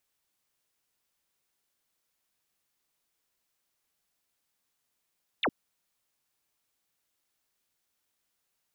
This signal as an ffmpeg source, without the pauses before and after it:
ffmpeg -f lavfi -i "aevalsrc='0.0631*clip(t/0.002,0,1)*clip((0.06-t)/0.002,0,1)*sin(2*PI*4100*0.06/log(190/4100)*(exp(log(190/4100)*t/0.06)-1))':duration=0.06:sample_rate=44100" out.wav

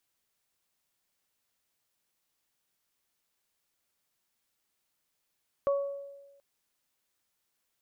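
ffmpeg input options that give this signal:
ffmpeg -f lavfi -i "aevalsrc='0.075*pow(10,-3*t/1.19)*sin(2*PI*560*t)+0.0266*pow(10,-3*t/0.55)*sin(2*PI*1120*t)':duration=0.73:sample_rate=44100" out.wav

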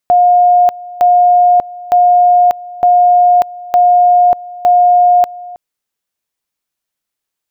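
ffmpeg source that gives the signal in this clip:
ffmpeg -f lavfi -i "aevalsrc='pow(10,(-4.5-20.5*gte(mod(t,0.91),0.59))/20)*sin(2*PI*713*t)':duration=5.46:sample_rate=44100" out.wav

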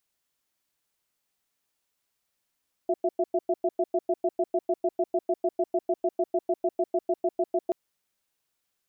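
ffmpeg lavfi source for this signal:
ffmpeg -f lavfi -i "aevalsrc='0.0631*(sin(2*PI*360*t)+sin(2*PI*668*t))*clip(min(mod(t,0.15),0.05-mod(t,0.15))/0.005,0,1)':duration=4.83:sample_rate=44100" out.wav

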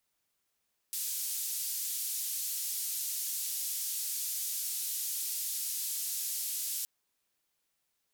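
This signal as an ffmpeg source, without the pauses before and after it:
ffmpeg -f lavfi -i "anoisesrc=color=white:duration=5.92:sample_rate=44100:seed=1,highpass=frequency=5200,lowpass=frequency=16000,volume=-27.4dB" out.wav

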